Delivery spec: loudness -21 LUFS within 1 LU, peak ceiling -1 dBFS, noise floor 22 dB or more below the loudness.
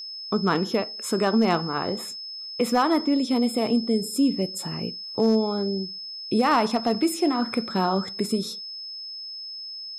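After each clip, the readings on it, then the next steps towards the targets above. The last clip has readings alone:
clipped samples 0.2%; clipping level -12.5 dBFS; steady tone 5.2 kHz; tone level -34 dBFS; loudness -25.0 LUFS; peak level -12.5 dBFS; loudness target -21.0 LUFS
-> clip repair -12.5 dBFS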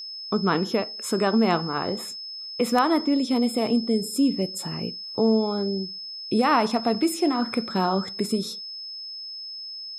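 clipped samples 0.0%; steady tone 5.2 kHz; tone level -34 dBFS
-> band-stop 5.2 kHz, Q 30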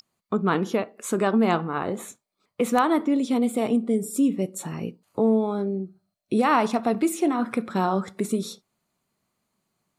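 steady tone not found; loudness -24.5 LUFS; peak level -5.5 dBFS; loudness target -21.0 LUFS
-> trim +3.5 dB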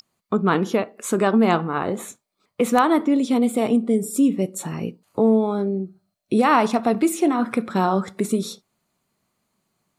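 loudness -21.0 LUFS; peak level -2.0 dBFS; noise floor -78 dBFS

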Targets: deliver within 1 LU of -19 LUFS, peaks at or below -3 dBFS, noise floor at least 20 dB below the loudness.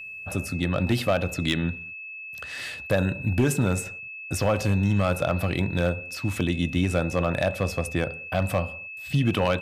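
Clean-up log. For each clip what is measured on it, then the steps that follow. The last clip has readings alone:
clipped samples 0.6%; clipping level -14.0 dBFS; steady tone 2.6 kHz; tone level -36 dBFS; loudness -26.0 LUFS; peak level -14.0 dBFS; loudness target -19.0 LUFS
-> clip repair -14 dBFS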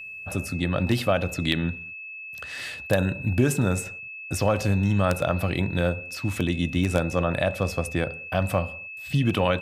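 clipped samples 0.0%; steady tone 2.6 kHz; tone level -36 dBFS
-> band-stop 2.6 kHz, Q 30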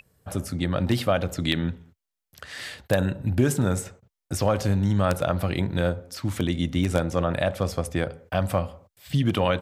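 steady tone not found; loudness -26.0 LUFS; peak level -5.0 dBFS; loudness target -19.0 LUFS
-> trim +7 dB; peak limiter -3 dBFS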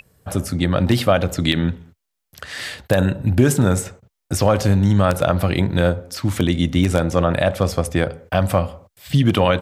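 loudness -19.0 LUFS; peak level -3.0 dBFS; noise floor -78 dBFS

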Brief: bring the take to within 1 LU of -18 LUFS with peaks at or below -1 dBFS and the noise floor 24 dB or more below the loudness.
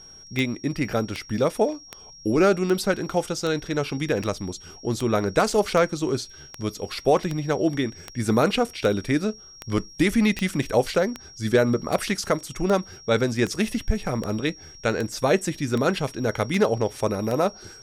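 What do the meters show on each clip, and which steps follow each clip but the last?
clicks found 23; steady tone 5.6 kHz; tone level -44 dBFS; loudness -24.5 LUFS; peak level -8.5 dBFS; loudness target -18.0 LUFS
-> de-click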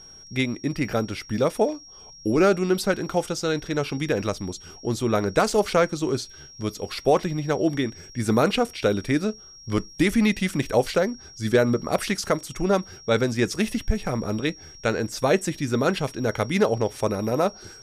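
clicks found 0; steady tone 5.6 kHz; tone level -44 dBFS
-> band-stop 5.6 kHz, Q 30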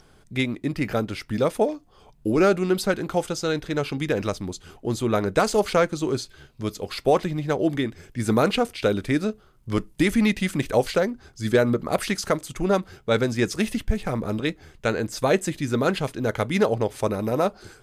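steady tone not found; loudness -24.5 LUFS; peak level -8.5 dBFS; loudness target -18.0 LUFS
-> trim +6.5 dB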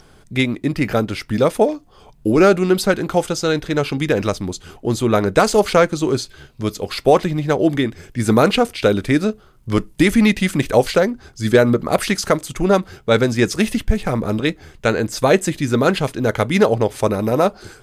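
loudness -18.0 LUFS; peak level -2.0 dBFS; noise floor -48 dBFS

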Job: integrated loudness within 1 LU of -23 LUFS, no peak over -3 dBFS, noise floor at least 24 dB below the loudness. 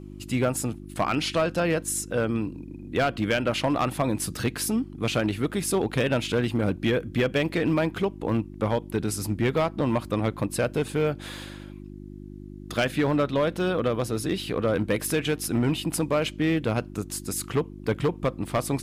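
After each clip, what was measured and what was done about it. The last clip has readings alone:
clipped samples 1.1%; clipping level -17.0 dBFS; hum 50 Hz; highest harmonic 350 Hz; hum level -39 dBFS; loudness -26.5 LUFS; peak level -17.0 dBFS; loudness target -23.0 LUFS
-> clip repair -17 dBFS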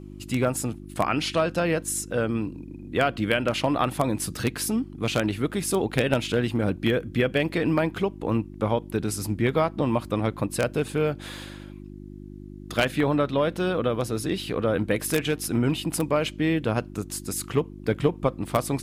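clipped samples 0.0%; hum 50 Hz; highest harmonic 350 Hz; hum level -39 dBFS
-> de-hum 50 Hz, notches 7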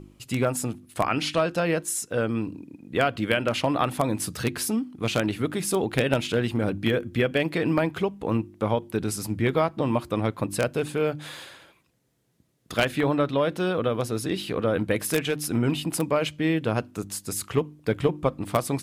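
hum not found; loudness -26.0 LUFS; peak level -7.5 dBFS; loudness target -23.0 LUFS
-> trim +3 dB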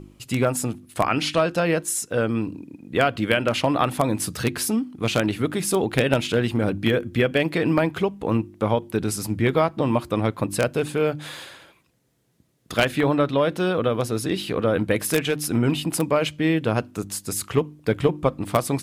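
loudness -23.0 LUFS; peak level -4.5 dBFS; noise floor -56 dBFS

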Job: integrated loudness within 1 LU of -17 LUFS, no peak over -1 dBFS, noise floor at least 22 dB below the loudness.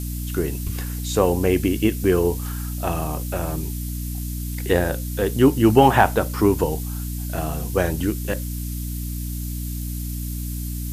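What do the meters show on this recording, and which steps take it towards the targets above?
hum 60 Hz; highest harmonic 300 Hz; hum level -26 dBFS; noise floor -28 dBFS; noise floor target -45 dBFS; loudness -22.5 LUFS; peak level -1.5 dBFS; loudness target -17.0 LUFS
-> de-hum 60 Hz, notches 5; noise reduction 17 dB, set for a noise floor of -28 dBFS; trim +5.5 dB; peak limiter -1 dBFS

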